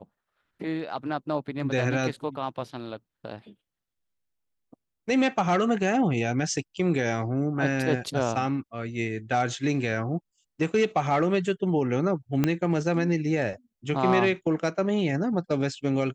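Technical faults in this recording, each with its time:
0:12.44: click −10 dBFS

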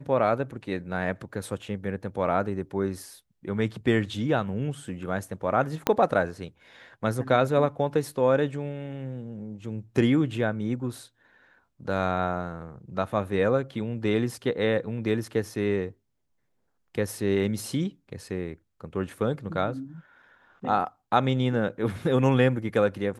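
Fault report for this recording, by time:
0:05.87: click −7 dBFS

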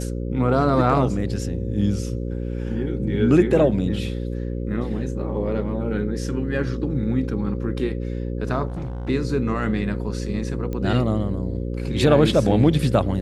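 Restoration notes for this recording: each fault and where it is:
mains buzz 60 Hz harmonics 9 −27 dBFS
0:08.68–0:09.10: clipping −26 dBFS
0:10.73: click −18 dBFS

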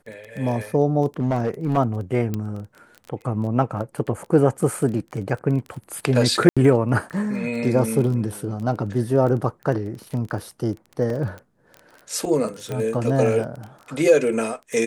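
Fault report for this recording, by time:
surface crackle 18 per second −29 dBFS
0:01.20–0:01.78: clipping −17 dBFS
0:02.34: click −13 dBFS
0:06.49–0:06.57: drop-out 76 ms
0:11.10: drop-out 2.4 ms
0:12.72: click −16 dBFS

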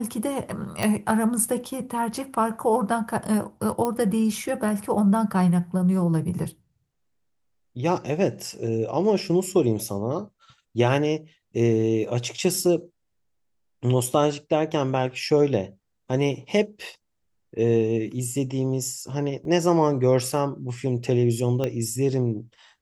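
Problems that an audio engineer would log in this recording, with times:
0:00.83: click
0:03.85: click −13 dBFS
0:19.45: drop-out 2.1 ms
0:21.64: click −14 dBFS

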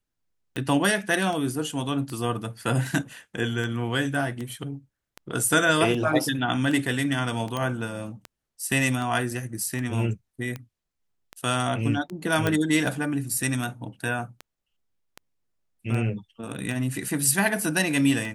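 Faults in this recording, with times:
scratch tick 78 rpm −20 dBFS
0:07.57: click −15 dBFS
0:12.47: click −10 dBFS

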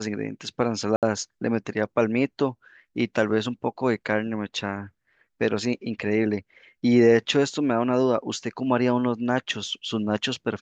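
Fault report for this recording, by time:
0:00.96–0:01.03: drop-out 67 ms

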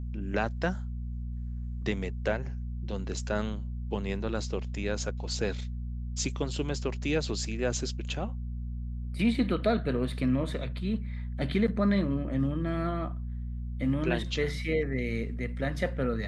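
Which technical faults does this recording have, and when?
mains hum 60 Hz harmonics 4 −35 dBFS

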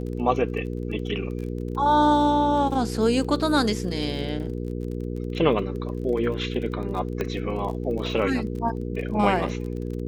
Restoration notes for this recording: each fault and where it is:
surface crackle 27 per second −33 dBFS
mains hum 60 Hz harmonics 8 −30 dBFS
0:07.21: click −14 dBFS

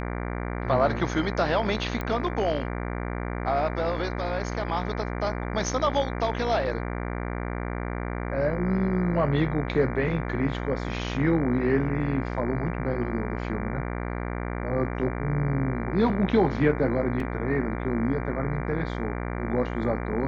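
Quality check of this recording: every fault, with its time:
mains buzz 60 Hz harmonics 39 −31 dBFS
0:02.01: click −17 dBFS
0:17.20: drop-out 2.8 ms

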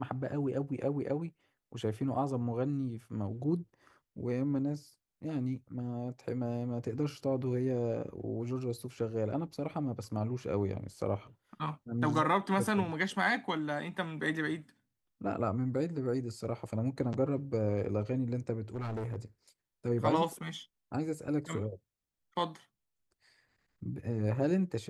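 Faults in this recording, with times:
0:18.74–0:19.16: clipping −33.5 dBFS

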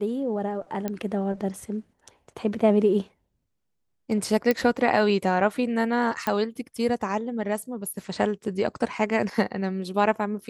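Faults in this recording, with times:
0:00.88: click −15 dBFS
0:04.51: click −10 dBFS
0:06.27: click −12 dBFS

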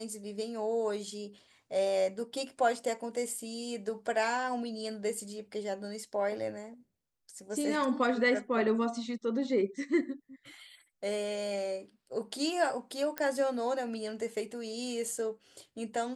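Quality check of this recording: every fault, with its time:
0:13.18: click −18 dBFS

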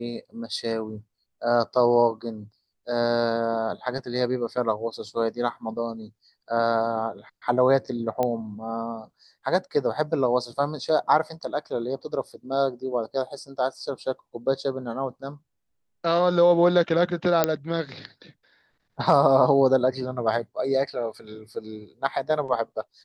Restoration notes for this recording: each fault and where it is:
0:08.23: click −13 dBFS
0:17.44: click −4 dBFS

